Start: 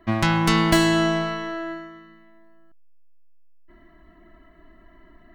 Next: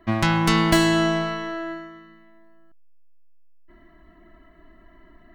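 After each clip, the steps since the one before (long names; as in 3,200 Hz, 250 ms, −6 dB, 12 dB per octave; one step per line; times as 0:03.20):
no processing that can be heard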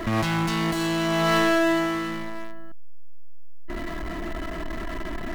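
compressor whose output falls as the input rises −29 dBFS, ratio −1
power curve on the samples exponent 0.5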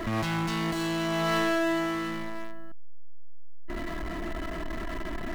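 running median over 3 samples
in parallel at −1.5 dB: brickwall limiter −26 dBFS, peak gain reduction 11.5 dB
on the sum: level −7.5 dB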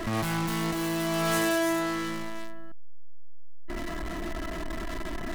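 stylus tracing distortion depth 0.42 ms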